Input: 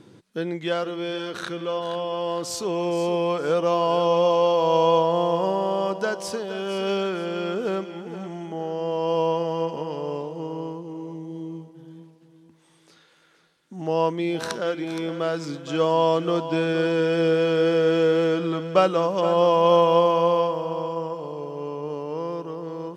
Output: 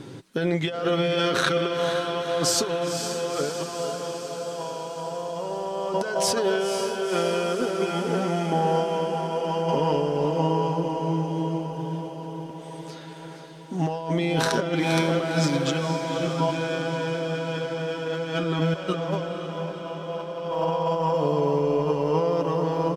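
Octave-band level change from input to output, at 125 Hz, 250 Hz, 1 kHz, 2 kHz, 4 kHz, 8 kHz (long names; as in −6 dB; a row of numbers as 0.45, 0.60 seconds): +4.5, 0.0, −2.5, +2.0, +2.0, +8.5 decibels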